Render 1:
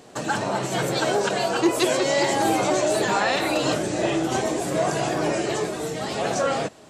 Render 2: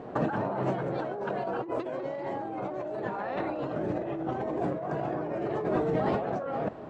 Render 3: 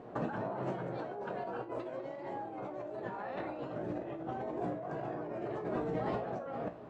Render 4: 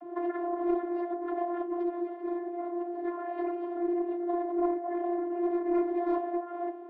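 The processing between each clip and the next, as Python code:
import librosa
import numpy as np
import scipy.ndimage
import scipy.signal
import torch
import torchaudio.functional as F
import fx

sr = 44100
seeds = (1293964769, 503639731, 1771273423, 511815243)

y1 = scipy.signal.sosfilt(scipy.signal.butter(2, 1200.0, 'lowpass', fs=sr, output='sos'), x)
y1 = fx.over_compress(y1, sr, threshold_db=-32.0, ratio=-1.0)
y2 = fx.comb_fb(y1, sr, f0_hz=59.0, decay_s=0.33, harmonics='all', damping=0.0, mix_pct=70)
y2 = F.gain(torch.from_numpy(y2), -2.0).numpy()
y3 = scipy.signal.sosfilt(scipy.signal.butter(2, 2700.0, 'lowpass', fs=sr, output='sos'), y2)
y3 = fx.vocoder(y3, sr, bands=32, carrier='saw', carrier_hz=348.0)
y3 = fx.doppler_dist(y3, sr, depth_ms=0.22)
y3 = F.gain(torch.from_numpy(y3), 8.5).numpy()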